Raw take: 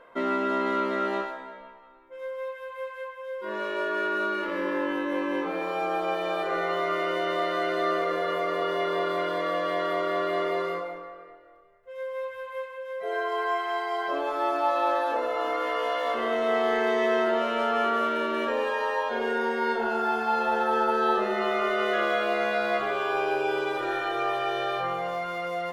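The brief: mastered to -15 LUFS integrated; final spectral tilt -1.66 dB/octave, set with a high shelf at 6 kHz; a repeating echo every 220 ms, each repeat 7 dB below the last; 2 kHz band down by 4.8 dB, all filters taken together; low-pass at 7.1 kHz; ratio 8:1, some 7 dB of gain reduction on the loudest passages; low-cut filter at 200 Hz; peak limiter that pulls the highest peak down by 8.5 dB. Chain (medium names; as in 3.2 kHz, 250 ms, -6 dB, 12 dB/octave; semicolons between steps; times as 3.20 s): high-pass 200 Hz; low-pass 7.1 kHz; peaking EQ 2 kHz -6 dB; treble shelf 6 kHz -7.5 dB; compression 8:1, threshold -29 dBFS; peak limiter -29.5 dBFS; feedback delay 220 ms, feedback 45%, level -7 dB; trim +22 dB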